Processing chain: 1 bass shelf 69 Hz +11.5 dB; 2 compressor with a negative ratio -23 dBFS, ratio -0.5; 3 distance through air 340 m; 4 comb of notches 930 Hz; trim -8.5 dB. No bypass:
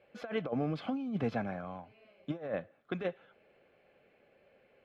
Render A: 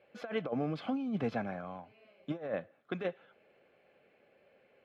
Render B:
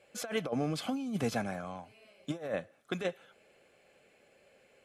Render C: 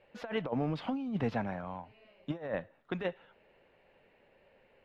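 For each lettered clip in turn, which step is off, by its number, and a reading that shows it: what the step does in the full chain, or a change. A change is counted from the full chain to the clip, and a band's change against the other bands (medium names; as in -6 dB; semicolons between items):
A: 1, 125 Hz band -2.0 dB; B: 3, 4 kHz band +7.5 dB; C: 4, 500 Hz band -1.5 dB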